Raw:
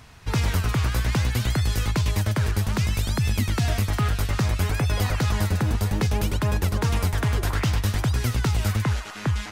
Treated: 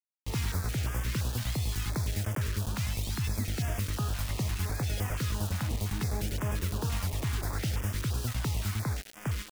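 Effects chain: bit-crush 5-bit; stepped notch 5.8 Hz 390–4100 Hz; gain -8.5 dB

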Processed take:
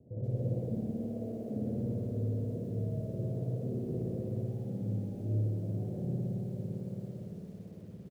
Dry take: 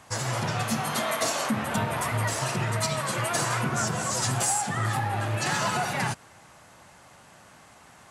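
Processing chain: HPF 57 Hz 12 dB/oct; feedback echo 0.621 s, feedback 43%, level -14.5 dB; limiter -26 dBFS, peak gain reduction 10.5 dB; steep low-pass 520 Hz 48 dB/oct; spring tank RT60 2.6 s, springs 56 ms, chirp 55 ms, DRR -5 dB; vocal rider within 4 dB 2 s; lo-fi delay 0.128 s, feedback 80%, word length 9-bit, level -15 dB; gain -2.5 dB

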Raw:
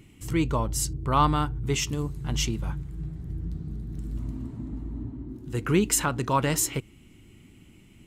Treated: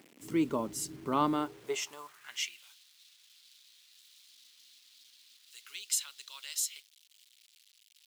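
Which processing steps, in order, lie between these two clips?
small resonant body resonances 410/590/2100 Hz, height 7 dB, ringing for 90 ms; bit-crush 8-bit; high-pass sweep 250 Hz -> 3800 Hz, 1.27–2.74; gain -8.5 dB

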